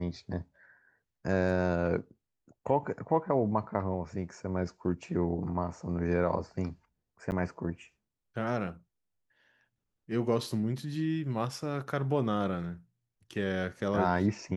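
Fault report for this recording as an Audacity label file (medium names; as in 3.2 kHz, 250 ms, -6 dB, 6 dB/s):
7.310000	7.320000	dropout 9.5 ms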